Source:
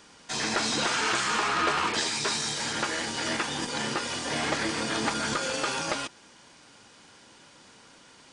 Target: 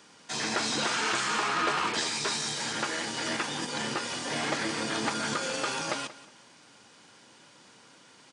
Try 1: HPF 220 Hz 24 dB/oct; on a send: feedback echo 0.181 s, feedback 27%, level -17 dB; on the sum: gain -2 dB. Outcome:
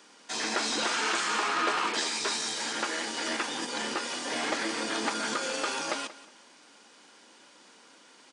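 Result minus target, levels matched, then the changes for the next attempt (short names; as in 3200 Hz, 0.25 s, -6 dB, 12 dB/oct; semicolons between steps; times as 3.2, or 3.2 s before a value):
125 Hz band -11.0 dB
change: HPF 100 Hz 24 dB/oct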